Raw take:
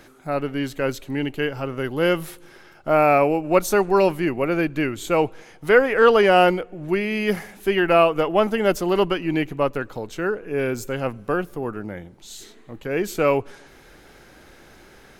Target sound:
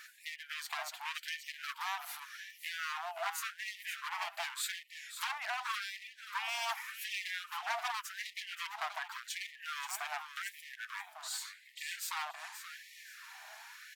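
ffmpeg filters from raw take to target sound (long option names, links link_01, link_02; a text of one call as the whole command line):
ffmpeg -i in.wav -filter_complex "[0:a]acrossover=split=200[link_01][link_02];[link_02]acompressor=threshold=-29dB:ratio=8[link_03];[link_01][link_03]amix=inputs=2:normalize=0,flanger=delay=4.3:depth=1.3:regen=54:speed=0.93:shape=sinusoidal,aeval=exprs='0.0282*(abs(mod(val(0)/0.0282+3,4)-2)-1)':channel_layout=same,asplit=2[link_04][link_05];[link_05]aecho=0:1:576|1152|1728:0.316|0.0759|0.0182[link_06];[link_04][link_06]amix=inputs=2:normalize=0,asetrate=48000,aresample=44100,afftfilt=real='re*gte(b*sr/1024,610*pow(1800/610,0.5+0.5*sin(2*PI*0.87*pts/sr)))':imag='im*gte(b*sr/1024,610*pow(1800/610,0.5+0.5*sin(2*PI*0.87*pts/sr)))':win_size=1024:overlap=0.75,volume=4dB" out.wav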